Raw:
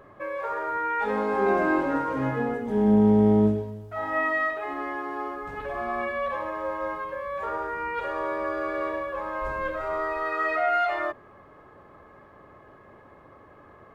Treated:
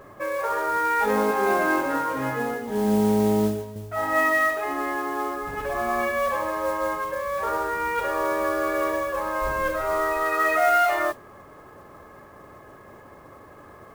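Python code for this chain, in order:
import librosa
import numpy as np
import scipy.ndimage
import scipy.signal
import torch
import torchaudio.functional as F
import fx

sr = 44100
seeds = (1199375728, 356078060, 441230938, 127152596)

y = fx.low_shelf(x, sr, hz=480.0, db=-9.0, at=(1.31, 3.76))
y = fx.mod_noise(y, sr, seeds[0], snr_db=20)
y = y * librosa.db_to_amplitude(4.5)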